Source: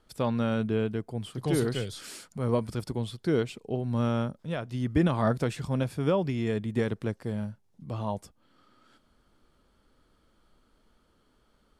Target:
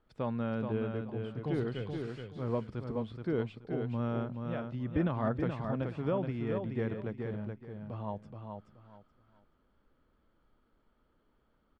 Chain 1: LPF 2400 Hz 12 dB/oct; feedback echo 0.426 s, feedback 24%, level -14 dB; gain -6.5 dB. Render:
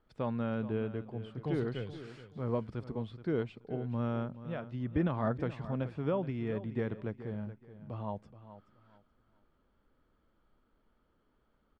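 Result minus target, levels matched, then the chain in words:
echo-to-direct -8.5 dB
LPF 2400 Hz 12 dB/oct; feedback echo 0.426 s, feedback 24%, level -5.5 dB; gain -6.5 dB

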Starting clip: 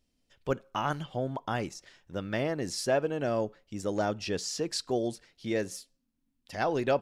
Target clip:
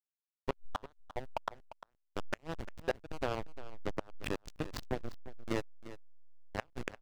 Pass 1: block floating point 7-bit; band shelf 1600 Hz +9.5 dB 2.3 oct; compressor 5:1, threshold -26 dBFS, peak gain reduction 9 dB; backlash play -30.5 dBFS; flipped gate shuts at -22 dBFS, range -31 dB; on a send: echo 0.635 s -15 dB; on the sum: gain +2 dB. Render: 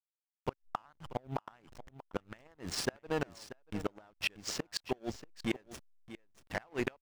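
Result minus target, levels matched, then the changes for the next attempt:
echo 0.286 s late; backlash: distortion -16 dB
change: backlash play -19 dBFS; change: echo 0.349 s -15 dB

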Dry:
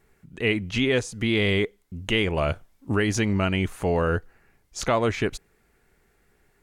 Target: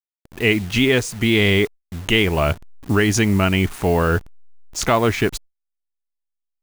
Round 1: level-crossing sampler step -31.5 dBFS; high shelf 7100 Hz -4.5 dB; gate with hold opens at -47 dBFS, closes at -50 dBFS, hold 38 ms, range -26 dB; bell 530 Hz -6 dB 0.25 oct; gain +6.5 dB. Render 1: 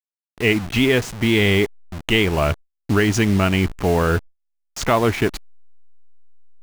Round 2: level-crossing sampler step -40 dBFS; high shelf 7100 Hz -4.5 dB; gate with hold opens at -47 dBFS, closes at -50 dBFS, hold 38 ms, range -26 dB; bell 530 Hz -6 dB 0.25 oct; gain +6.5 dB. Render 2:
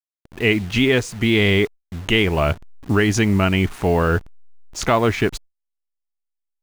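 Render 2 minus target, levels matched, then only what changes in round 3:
8000 Hz band -3.5 dB
change: high shelf 7100 Hz +4 dB

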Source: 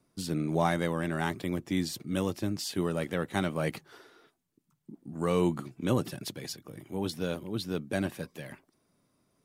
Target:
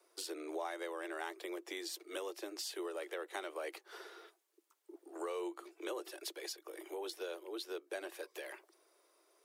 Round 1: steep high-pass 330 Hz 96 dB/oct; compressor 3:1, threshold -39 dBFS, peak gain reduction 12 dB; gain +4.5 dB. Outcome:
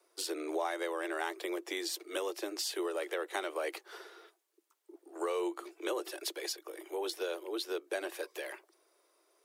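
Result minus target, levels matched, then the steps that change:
compressor: peak gain reduction -6.5 dB
change: compressor 3:1, threshold -48.5 dBFS, peak gain reduction 18.5 dB

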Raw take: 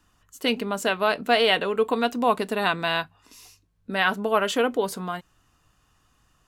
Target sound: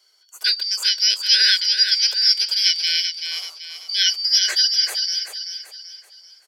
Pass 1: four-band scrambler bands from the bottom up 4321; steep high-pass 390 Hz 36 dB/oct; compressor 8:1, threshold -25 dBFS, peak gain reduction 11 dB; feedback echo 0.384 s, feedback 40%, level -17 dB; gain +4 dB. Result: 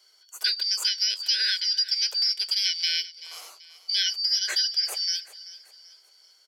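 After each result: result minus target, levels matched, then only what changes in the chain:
compressor: peak gain reduction +11 dB; echo-to-direct -10 dB
remove: compressor 8:1, threshold -25 dBFS, peak gain reduction 11 dB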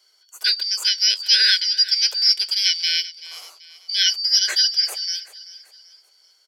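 echo-to-direct -10 dB
change: feedback echo 0.384 s, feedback 40%, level -7 dB

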